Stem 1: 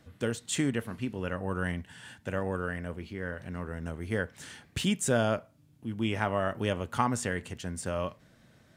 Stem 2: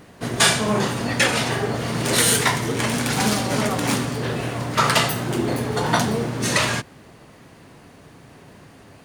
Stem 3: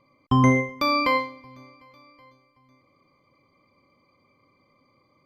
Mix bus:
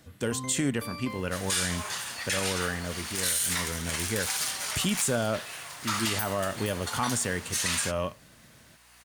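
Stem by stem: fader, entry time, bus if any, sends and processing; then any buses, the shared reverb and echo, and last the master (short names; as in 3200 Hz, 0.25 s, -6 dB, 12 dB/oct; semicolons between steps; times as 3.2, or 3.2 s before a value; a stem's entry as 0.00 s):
+2.5 dB, 0.00 s, no send, one diode to ground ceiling -11.5 dBFS
+2.5 dB, 1.10 s, no send, HPF 1200 Hz 12 dB/oct; hum 60 Hz, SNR 34 dB; auto duck -11 dB, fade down 1.60 s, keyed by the first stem
-20.0 dB, 0.00 s, no send, dry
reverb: off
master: high shelf 5300 Hz +10.5 dB; limiter -17.5 dBFS, peak gain reduction 11 dB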